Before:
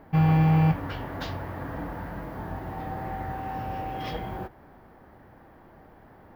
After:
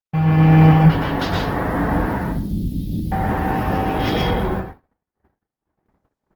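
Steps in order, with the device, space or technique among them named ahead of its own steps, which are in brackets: 2.18–3.12 elliptic band-stop 260–3800 Hz, stop band 50 dB; speakerphone in a meeting room (reverb RT60 0.45 s, pre-delay 0.11 s, DRR -0.5 dB; speakerphone echo 0.11 s, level -21 dB; AGC gain up to 10 dB; gate -32 dBFS, range -55 dB; gain +1.5 dB; Opus 16 kbps 48000 Hz)

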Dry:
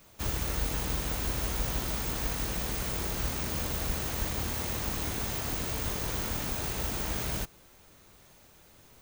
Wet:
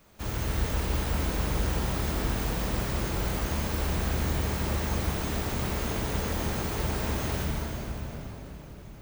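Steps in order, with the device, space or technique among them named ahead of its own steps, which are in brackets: swimming-pool hall (reverb RT60 4.5 s, pre-delay 35 ms, DRR -3 dB; high shelf 3100 Hz -7 dB)

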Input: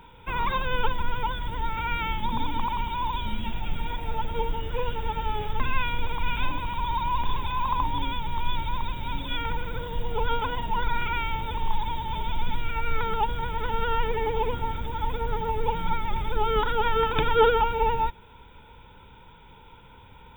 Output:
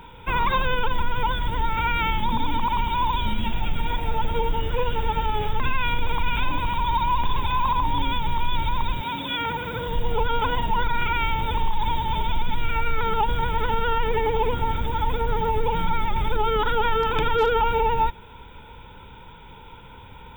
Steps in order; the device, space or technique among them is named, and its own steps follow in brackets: clipper into limiter (hard clip -11.5 dBFS, distortion -33 dB; limiter -19 dBFS, peak gain reduction 7.5 dB); 9–9.85 HPF 210 Hz -> 91 Hz 12 dB/oct; gain +6 dB

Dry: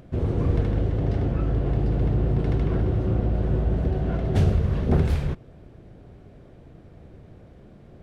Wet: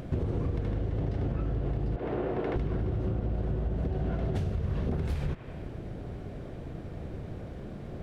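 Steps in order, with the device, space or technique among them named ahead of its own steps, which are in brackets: 1.96–2.56 three-band isolator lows -21 dB, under 300 Hz, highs -13 dB, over 3000 Hz; band-limited delay 95 ms, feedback 58%, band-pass 1500 Hz, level -14 dB; serial compression, leveller first (compressor, threshold -23 dBFS, peak gain reduction 8 dB; compressor 6:1, threshold -35 dBFS, peak gain reduction 12.5 dB); gain +7.5 dB

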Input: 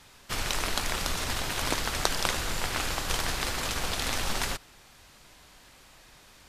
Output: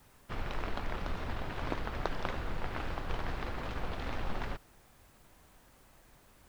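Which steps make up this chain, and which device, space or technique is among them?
cassette deck with a dirty head (tape spacing loss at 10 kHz 42 dB; wow and flutter; white noise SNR 32 dB); bell 8300 Hz +2 dB; gain -2.5 dB

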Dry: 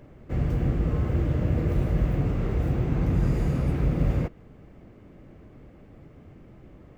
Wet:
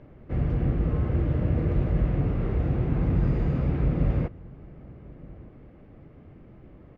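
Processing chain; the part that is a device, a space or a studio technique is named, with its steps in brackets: shout across a valley (air absorption 220 m; outdoor echo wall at 210 m, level -22 dB)

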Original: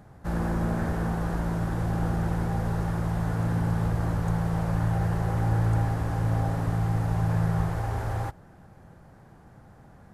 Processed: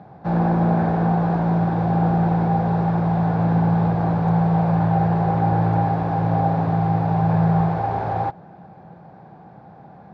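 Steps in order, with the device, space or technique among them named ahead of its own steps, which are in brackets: kitchen radio (speaker cabinet 160–3700 Hz, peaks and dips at 170 Hz +6 dB, 250 Hz -3 dB, 760 Hz +8 dB, 1300 Hz -5 dB, 1900 Hz -7 dB, 3000 Hz -8 dB); gain +8 dB

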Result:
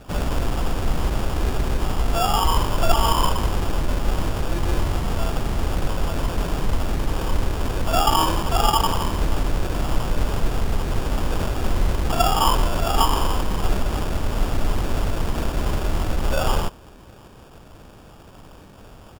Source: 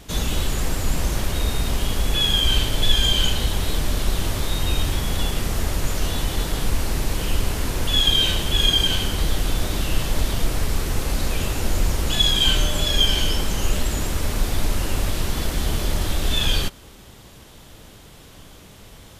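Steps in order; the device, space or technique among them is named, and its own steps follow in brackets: crushed at another speed (playback speed 0.8×; sample-and-hold 27×; playback speed 1.25×)

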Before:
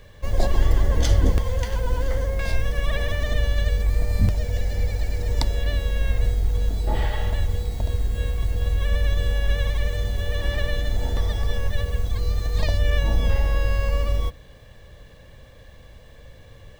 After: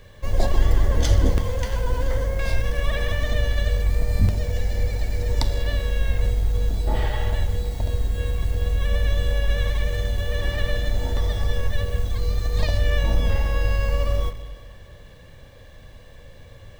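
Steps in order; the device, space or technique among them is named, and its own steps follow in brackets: saturated reverb return (on a send at -4.5 dB: reverb RT60 1.5 s, pre-delay 7 ms + soft clip -23.5 dBFS, distortion -9 dB)

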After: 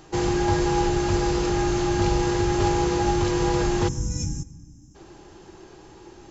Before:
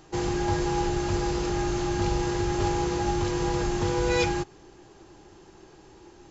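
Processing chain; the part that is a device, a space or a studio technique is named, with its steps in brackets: spectral gain 3.88–4.95, 320–5100 Hz -27 dB; compressed reverb return (on a send at -9 dB: reverb RT60 0.90 s, pre-delay 87 ms + compressor, threshold -35 dBFS, peak gain reduction 14.5 dB); on the sum: gain +4 dB

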